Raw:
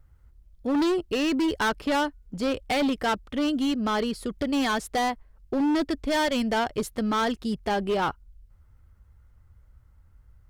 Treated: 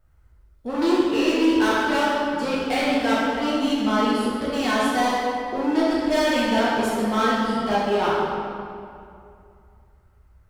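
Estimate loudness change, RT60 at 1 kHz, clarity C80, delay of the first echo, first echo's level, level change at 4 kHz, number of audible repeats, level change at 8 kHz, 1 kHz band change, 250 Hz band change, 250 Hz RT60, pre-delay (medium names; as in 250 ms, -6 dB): +4.5 dB, 2.4 s, -0.5 dB, no echo, no echo, +4.0 dB, no echo, +3.0 dB, +5.5 dB, +4.0 dB, 2.6 s, 6 ms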